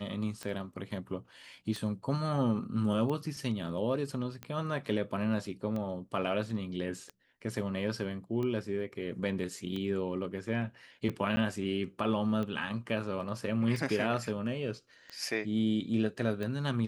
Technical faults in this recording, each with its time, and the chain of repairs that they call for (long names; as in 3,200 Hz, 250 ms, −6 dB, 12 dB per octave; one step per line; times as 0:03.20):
scratch tick 45 rpm −25 dBFS
0:11.36–0:11.37: drop-out 10 ms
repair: click removal
repair the gap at 0:11.36, 10 ms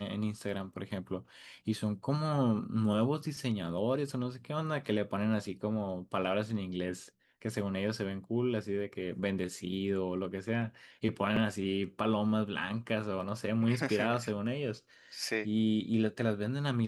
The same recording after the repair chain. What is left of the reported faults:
none of them is left